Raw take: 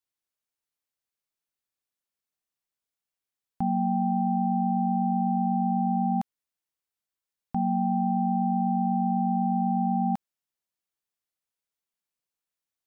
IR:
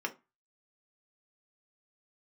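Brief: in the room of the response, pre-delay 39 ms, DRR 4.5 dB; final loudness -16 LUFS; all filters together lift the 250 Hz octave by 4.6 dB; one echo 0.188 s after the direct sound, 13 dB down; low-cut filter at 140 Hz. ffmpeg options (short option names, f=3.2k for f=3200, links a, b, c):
-filter_complex "[0:a]highpass=140,equalizer=f=250:t=o:g=6.5,aecho=1:1:188:0.224,asplit=2[a][b];[1:a]atrim=start_sample=2205,adelay=39[c];[b][c]afir=irnorm=-1:irlink=0,volume=-9dB[d];[a][d]amix=inputs=2:normalize=0,volume=4dB"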